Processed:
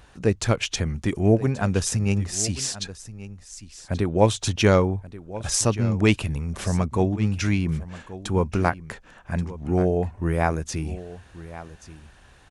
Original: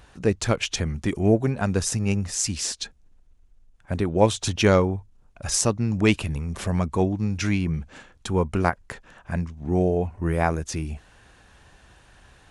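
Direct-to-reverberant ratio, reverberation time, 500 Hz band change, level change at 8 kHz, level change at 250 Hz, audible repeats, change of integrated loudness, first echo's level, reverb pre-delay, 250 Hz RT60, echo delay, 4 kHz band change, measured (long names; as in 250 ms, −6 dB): no reverb audible, no reverb audible, 0.0 dB, 0.0 dB, +0.5 dB, 1, +0.5 dB, −16.0 dB, no reverb audible, no reverb audible, 1,131 ms, 0.0 dB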